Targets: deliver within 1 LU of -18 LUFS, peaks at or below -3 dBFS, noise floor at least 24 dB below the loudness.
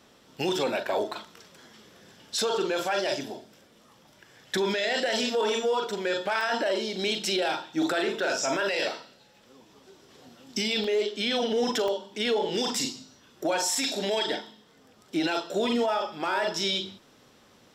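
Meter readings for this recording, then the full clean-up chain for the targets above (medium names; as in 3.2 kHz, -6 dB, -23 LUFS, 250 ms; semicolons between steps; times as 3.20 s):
clipped samples 0.1%; clipping level -19.0 dBFS; dropouts 4; longest dropout 2.8 ms; loudness -27.5 LUFS; peak level -19.0 dBFS; loudness target -18.0 LUFS
-> clip repair -19 dBFS; interpolate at 6.41/10.84/11.88/13.75 s, 2.8 ms; trim +9.5 dB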